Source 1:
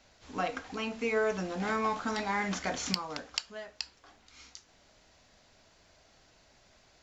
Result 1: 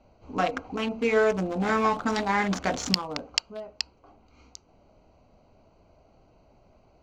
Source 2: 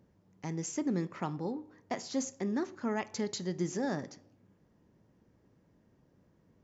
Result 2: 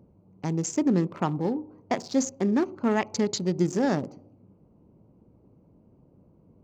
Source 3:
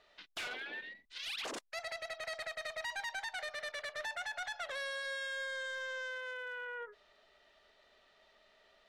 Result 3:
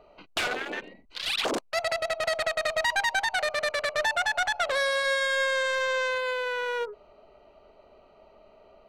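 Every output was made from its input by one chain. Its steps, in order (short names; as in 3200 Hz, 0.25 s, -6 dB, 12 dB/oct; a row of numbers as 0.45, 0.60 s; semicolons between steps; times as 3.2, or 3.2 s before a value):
Wiener smoothing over 25 samples; match loudness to -27 LUFS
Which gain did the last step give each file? +7.5, +9.5, +17.0 dB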